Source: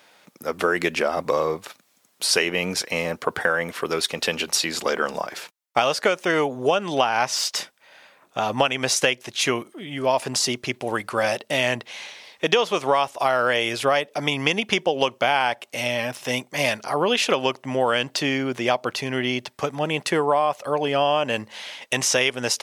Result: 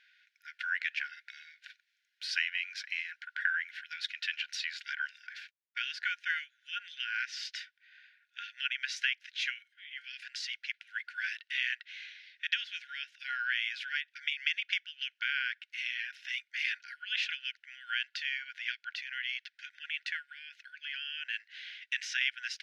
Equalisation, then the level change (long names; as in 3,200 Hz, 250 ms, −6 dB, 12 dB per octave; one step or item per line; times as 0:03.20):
linear-phase brick-wall high-pass 1,400 Hz
high-frequency loss of the air 260 metres
−4.5 dB